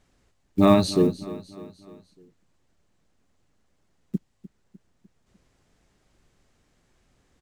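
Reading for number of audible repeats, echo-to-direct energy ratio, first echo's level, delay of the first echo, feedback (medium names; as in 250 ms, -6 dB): 3, -16.0 dB, -17.0 dB, 301 ms, 50%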